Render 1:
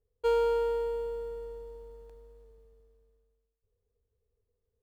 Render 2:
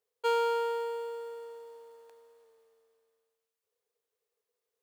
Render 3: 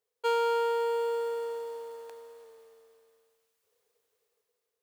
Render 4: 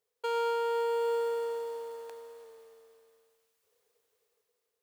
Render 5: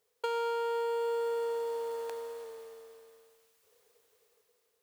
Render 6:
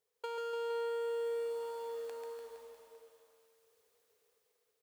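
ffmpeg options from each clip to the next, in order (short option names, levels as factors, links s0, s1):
-af "highpass=750,volume=1.88"
-af "dynaudnorm=f=380:g=5:m=3.35"
-af "alimiter=level_in=1.06:limit=0.0631:level=0:latency=1:release=20,volume=0.944,volume=1.12"
-af "acompressor=threshold=0.01:ratio=3,volume=2.24"
-af "aecho=1:1:140|294|463.4|649.7|854.7:0.631|0.398|0.251|0.158|0.1,volume=0.398"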